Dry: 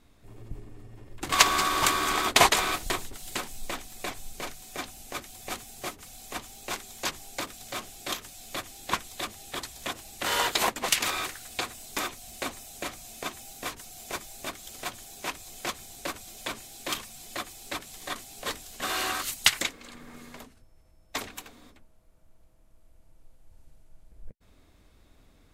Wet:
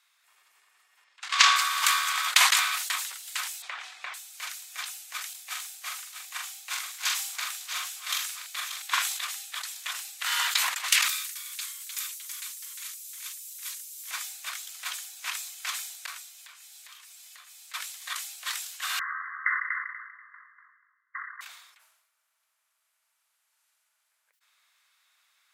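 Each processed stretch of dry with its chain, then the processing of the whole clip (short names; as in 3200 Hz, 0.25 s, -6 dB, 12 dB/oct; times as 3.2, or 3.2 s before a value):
1.04–1.56 Chebyshev low-pass 5200 Hz + doubler 31 ms -13 dB
3.62–4.14 Bessel low-pass 2200 Hz + bell 160 Hz +13.5 dB 2.6 oct + three-band squash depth 100%
5.33–9.17 reverse delay 0.515 s, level -6 dB + doubler 44 ms -4.5 dB + three-band expander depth 40%
11.08–14.11 pre-emphasis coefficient 0.97 + echoes that change speed 0.274 s, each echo -1 st, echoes 2, each echo -6 dB
16.06–17.74 compressor 10:1, threshold -41 dBFS + resonator 81 Hz, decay 0.21 s
18.99–21.41 brick-wall FIR band-pass 1000–2100 Hz + feedback echo 0.242 s, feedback 28%, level -5 dB
whole clip: HPF 1200 Hz 24 dB/oct; sustainer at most 55 dB/s; gain +1 dB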